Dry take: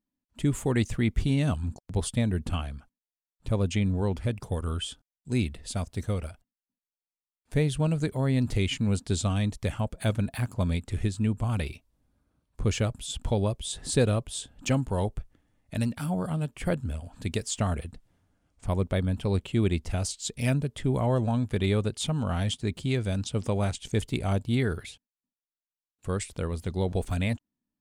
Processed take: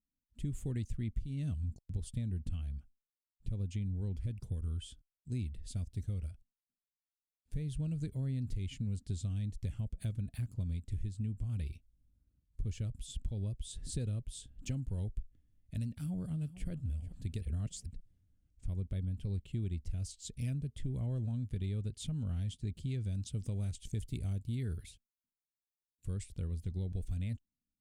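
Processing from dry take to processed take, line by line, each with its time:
0:15.91–0:16.68: delay throw 440 ms, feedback 35%, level −16.5 dB
0:17.41–0:17.86: reverse
0:23.15–0:26.14: high-shelf EQ 8,000 Hz +9 dB
whole clip: guitar amp tone stack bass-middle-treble 10-0-1; downward compressor, threshold −41 dBFS; level +8 dB

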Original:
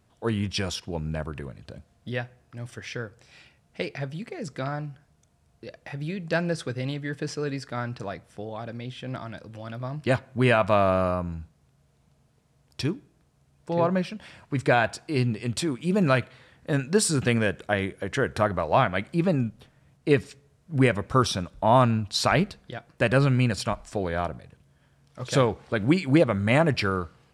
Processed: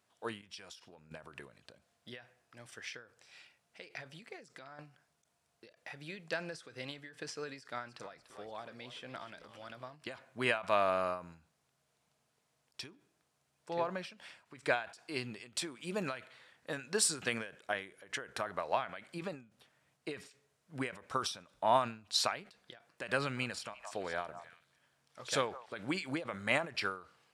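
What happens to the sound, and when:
0:00.41–0:01.11: downward compressor 12 to 1, threshold −37 dBFS
0:04.36–0:04.79: downward compressor 8 to 1, threshold −38 dBFS
0:07.59–0:09.93: echo with shifted repeats 292 ms, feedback 51%, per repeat −91 Hz, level −13 dB
0:23.20–0:25.66: echo through a band-pass that steps 167 ms, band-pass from 870 Hz, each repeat 1.4 octaves, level −10.5 dB
whole clip: high-pass filter 940 Hz 6 dB per octave; every ending faded ahead of time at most 140 dB per second; level −4 dB

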